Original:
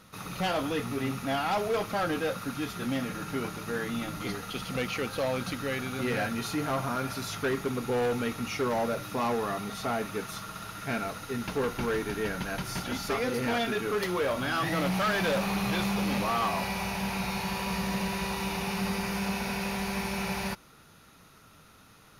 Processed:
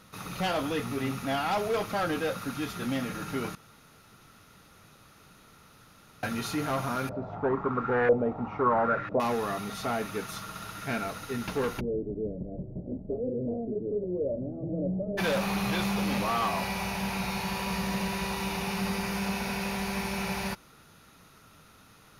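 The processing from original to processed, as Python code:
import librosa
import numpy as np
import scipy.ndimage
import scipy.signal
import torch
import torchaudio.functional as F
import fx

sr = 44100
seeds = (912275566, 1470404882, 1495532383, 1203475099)

y = fx.filter_lfo_lowpass(x, sr, shape='saw_up', hz=1.0, low_hz=540.0, high_hz=1900.0, q=4.0, at=(7.09, 9.2))
y = fx.cheby1_lowpass(y, sr, hz=600.0, order=5, at=(11.79, 15.17), fade=0.02)
y = fx.edit(y, sr, fx.room_tone_fill(start_s=3.55, length_s=2.68), tone=tone)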